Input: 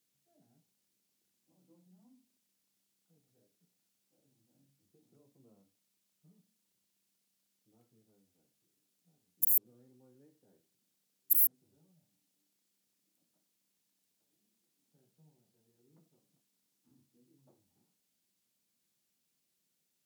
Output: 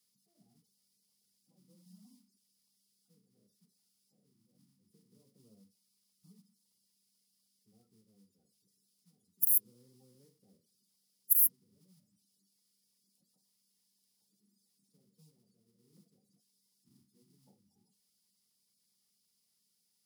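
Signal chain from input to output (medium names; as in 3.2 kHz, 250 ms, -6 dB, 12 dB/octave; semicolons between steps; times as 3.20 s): coarse spectral quantiser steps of 30 dB; graphic EQ with 31 bands 200 Hz +12 dB, 315 Hz -8 dB, 630 Hz -10 dB, 1.6 kHz -8 dB, 2.5 kHz -5 dB, 5 kHz +11 dB, 10 kHz +8 dB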